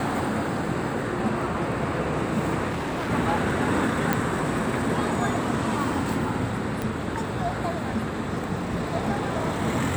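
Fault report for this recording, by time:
2.68–3.11 s: clipped -25.5 dBFS
4.13 s: pop
6.82 s: pop

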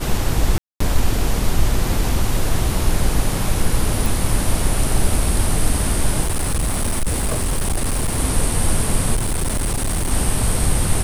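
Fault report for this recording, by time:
0.58–0.80 s: dropout 224 ms
4.06 s: pop
6.21–8.19 s: clipped -15.5 dBFS
9.15–10.12 s: clipped -16.5 dBFS

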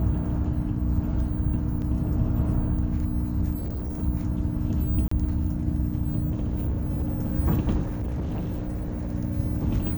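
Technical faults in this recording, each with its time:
hum 60 Hz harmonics 5 -30 dBFS
1.82 s: dropout 2.8 ms
3.56–4.03 s: clipped -27 dBFS
5.08–5.11 s: dropout 34 ms
6.30–7.30 s: clipped -22 dBFS
7.85–9.12 s: clipped -25.5 dBFS

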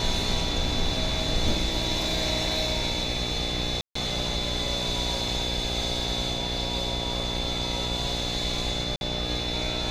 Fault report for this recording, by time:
buzz 60 Hz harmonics 14 -33 dBFS
whine 3.5 kHz -32 dBFS
3.81–3.95 s: dropout 144 ms
8.96–9.01 s: dropout 51 ms

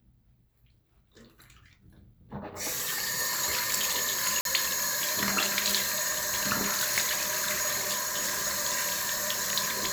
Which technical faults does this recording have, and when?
4.41–4.45 s: dropout 42 ms

